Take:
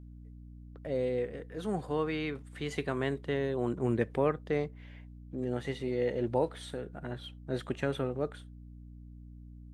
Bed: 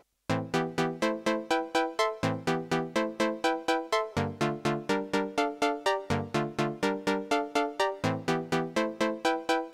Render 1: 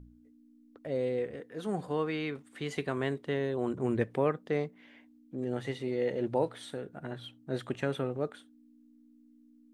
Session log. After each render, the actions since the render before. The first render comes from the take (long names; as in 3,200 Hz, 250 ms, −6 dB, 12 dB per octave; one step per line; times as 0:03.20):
hum removal 60 Hz, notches 3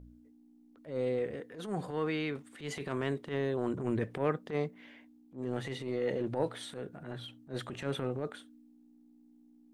transient designer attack −12 dB, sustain +3 dB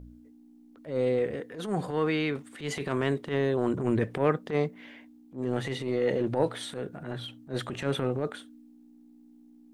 level +6 dB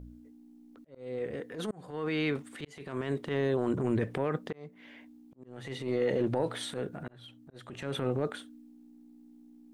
brickwall limiter −19.5 dBFS, peak gain reduction 9 dB
volume swells 582 ms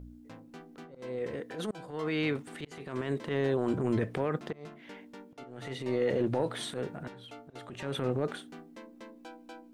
mix in bed −21.5 dB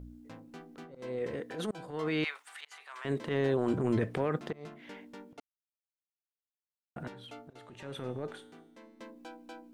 0:02.24–0:03.05: high-pass filter 900 Hz 24 dB per octave
0:05.40–0:06.96: silence
0:07.53–0:09.00: tuned comb filter 110 Hz, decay 1.1 s